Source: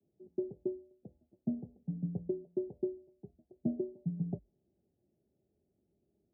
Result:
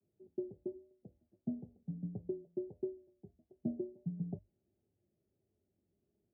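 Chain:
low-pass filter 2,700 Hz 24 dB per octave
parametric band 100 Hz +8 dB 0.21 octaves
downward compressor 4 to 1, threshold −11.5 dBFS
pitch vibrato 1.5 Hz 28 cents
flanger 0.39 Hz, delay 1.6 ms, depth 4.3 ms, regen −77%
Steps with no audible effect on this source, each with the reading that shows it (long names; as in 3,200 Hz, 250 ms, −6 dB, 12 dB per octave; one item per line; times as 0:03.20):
low-pass filter 2,700 Hz: nothing at its input above 640 Hz
downward compressor, threshold −11.5 dBFS: peak of its input −20.5 dBFS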